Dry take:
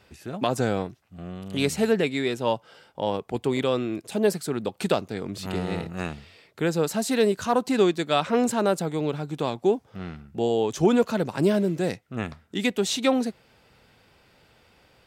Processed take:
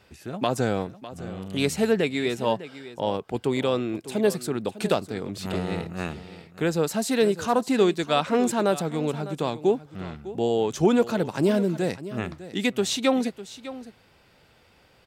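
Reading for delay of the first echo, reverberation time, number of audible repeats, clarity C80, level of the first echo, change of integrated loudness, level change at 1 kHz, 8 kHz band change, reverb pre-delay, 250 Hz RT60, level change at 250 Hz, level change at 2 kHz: 0.603 s, none, 1, none, -15.0 dB, 0.0 dB, 0.0 dB, 0.0 dB, none, none, 0.0 dB, 0.0 dB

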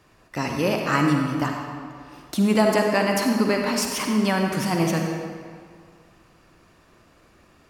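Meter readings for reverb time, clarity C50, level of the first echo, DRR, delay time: 2.0 s, 2.0 dB, none, 1.5 dB, none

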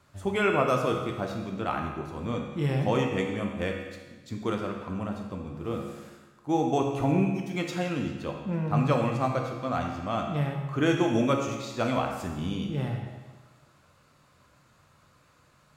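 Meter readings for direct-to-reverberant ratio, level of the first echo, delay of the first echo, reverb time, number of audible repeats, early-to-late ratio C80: 1.5 dB, none, none, 1.3 s, none, 6.0 dB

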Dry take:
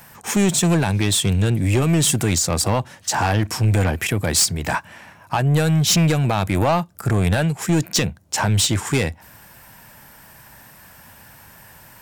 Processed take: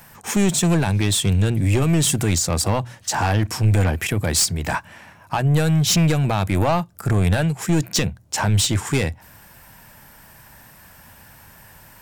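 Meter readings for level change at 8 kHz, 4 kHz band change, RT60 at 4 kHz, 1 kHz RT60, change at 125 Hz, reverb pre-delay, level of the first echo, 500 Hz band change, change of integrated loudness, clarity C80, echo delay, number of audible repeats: -1.5 dB, -1.5 dB, none, none, 0.0 dB, none, none, -1.5 dB, -0.5 dB, none, none, none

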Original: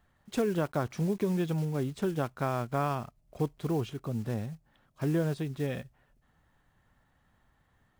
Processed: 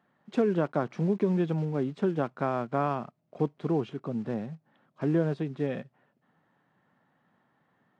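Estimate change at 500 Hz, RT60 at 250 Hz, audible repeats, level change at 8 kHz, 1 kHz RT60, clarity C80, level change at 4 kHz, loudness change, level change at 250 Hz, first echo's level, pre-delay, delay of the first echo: +3.5 dB, none, none, under -10 dB, none, none, -4.5 dB, +2.5 dB, +3.0 dB, none, none, none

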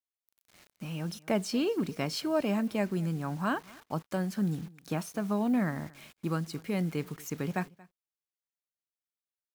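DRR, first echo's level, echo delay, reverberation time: none, -23.5 dB, 0.23 s, none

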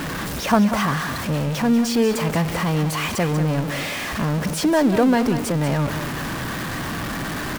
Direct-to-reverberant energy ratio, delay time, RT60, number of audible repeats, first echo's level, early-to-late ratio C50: none, 0.189 s, none, 1, -10.0 dB, none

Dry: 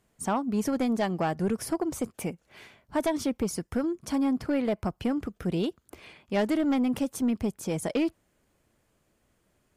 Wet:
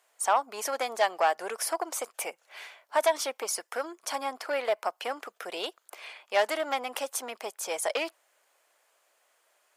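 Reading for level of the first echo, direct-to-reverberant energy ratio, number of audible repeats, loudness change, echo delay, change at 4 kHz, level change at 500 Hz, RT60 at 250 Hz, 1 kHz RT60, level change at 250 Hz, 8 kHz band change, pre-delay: none, none, none, -1.5 dB, none, +6.0 dB, +1.0 dB, none, none, -20.0 dB, +6.0 dB, none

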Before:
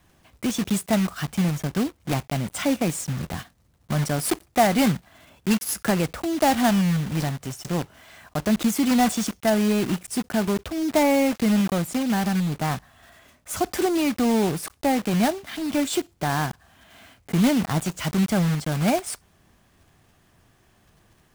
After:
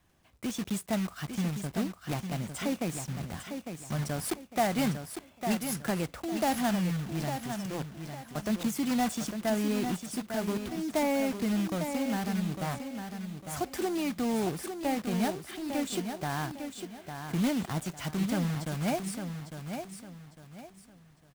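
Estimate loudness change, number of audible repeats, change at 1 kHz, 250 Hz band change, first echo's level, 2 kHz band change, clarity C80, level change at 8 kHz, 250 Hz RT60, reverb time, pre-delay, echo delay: -8.5 dB, 3, -8.0 dB, -8.0 dB, -7.5 dB, -8.0 dB, none, -8.0 dB, none, none, none, 0.853 s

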